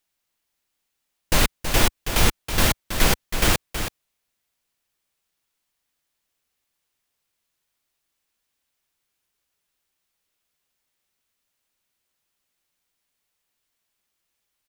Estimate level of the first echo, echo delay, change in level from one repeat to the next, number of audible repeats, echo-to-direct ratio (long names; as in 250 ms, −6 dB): −8.5 dB, 324 ms, repeats not evenly spaced, 1, −8.5 dB